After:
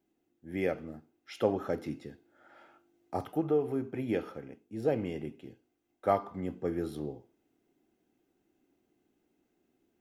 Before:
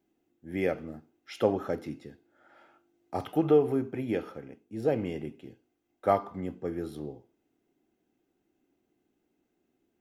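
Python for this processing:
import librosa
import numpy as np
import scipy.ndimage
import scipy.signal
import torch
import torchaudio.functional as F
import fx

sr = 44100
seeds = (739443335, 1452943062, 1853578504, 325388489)

y = fx.peak_eq(x, sr, hz=3000.0, db=-6.5, octaves=1.3, at=(3.14, 3.59))
y = fx.rider(y, sr, range_db=4, speed_s=0.5)
y = F.gain(torch.from_numpy(y), -3.0).numpy()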